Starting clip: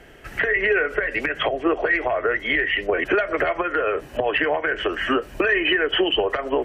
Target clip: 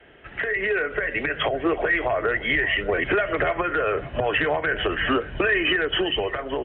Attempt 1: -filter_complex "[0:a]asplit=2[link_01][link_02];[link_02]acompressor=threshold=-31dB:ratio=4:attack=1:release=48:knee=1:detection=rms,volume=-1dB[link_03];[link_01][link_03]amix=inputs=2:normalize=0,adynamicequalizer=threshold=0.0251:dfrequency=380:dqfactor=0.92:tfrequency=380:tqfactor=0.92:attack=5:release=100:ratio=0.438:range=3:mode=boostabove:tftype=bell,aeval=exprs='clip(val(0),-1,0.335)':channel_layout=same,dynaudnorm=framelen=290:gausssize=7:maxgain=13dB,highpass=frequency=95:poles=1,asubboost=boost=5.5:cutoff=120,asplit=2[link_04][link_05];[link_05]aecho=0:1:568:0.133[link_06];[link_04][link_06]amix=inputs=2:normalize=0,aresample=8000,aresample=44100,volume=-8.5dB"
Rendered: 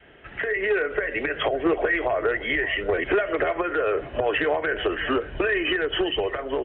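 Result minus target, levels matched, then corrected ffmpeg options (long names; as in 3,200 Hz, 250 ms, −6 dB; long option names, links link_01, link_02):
downward compressor: peak gain reduction +8 dB; 125 Hz band −4.0 dB
-filter_complex "[0:a]asplit=2[link_01][link_02];[link_02]acompressor=threshold=-20.5dB:ratio=4:attack=1:release=48:knee=1:detection=rms,volume=-1dB[link_03];[link_01][link_03]amix=inputs=2:normalize=0,adynamicequalizer=threshold=0.0251:dfrequency=170:dqfactor=0.92:tfrequency=170:tqfactor=0.92:attack=5:release=100:ratio=0.438:range=3:mode=boostabove:tftype=bell,aeval=exprs='clip(val(0),-1,0.335)':channel_layout=same,dynaudnorm=framelen=290:gausssize=7:maxgain=13dB,highpass=frequency=95:poles=1,asubboost=boost=5.5:cutoff=120,asplit=2[link_04][link_05];[link_05]aecho=0:1:568:0.133[link_06];[link_04][link_06]amix=inputs=2:normalize=0,aresample=8000,aresample=44100,volume=-8.5dB"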